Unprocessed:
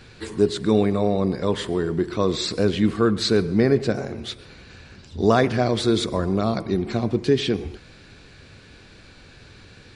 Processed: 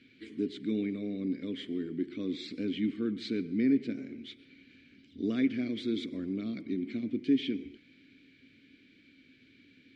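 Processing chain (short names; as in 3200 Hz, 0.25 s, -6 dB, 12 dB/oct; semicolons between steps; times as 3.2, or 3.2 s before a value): vowel filter i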